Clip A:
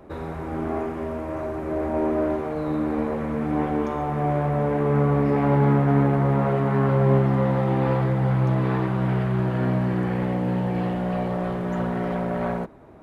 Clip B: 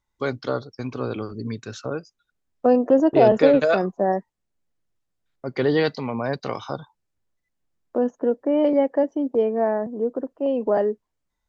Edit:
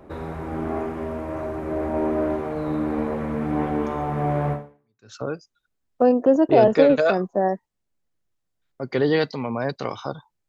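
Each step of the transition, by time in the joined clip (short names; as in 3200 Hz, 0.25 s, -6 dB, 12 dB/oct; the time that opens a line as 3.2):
clip A
4.84 switch to clip B from 1.48 s, crossfade 0.64 s exponential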